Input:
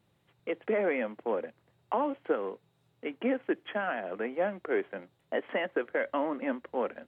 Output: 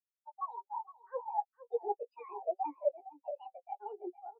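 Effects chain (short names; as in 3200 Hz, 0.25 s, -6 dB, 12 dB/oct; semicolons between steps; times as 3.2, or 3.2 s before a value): Doppler pass-by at 2.87, 37 m/s, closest 21 m; HPF 160 Hz 6 dB/oct; in parallel at -2 dB: level quantiser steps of 20 dB; on the sum: limiter -29.5 dBFS, peak gain reduction 11 dB; reverse; compressor 6:1, threshold -45 dBFS, peak gain reduction 11 dB; reverse; wide varispeed 1.61×; doubler 17 ms -5.5 dB; echo 0.462 s -4 dB; spectral expander 4:1; gain +13.5 dB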